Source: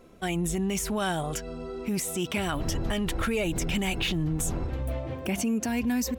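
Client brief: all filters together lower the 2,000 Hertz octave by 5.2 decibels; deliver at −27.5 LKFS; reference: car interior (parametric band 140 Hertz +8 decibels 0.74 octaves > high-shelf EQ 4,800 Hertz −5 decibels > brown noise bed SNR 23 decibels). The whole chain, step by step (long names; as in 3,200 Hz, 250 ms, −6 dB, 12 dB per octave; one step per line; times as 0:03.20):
parametric band 140 Hz +8 dB 0.74 octaves
parametric band 2,000 Hz −6 dB
high-shelf EQ 4,800 Hz −5 dB
brown noise bed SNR 23 dB
level +0.5 dB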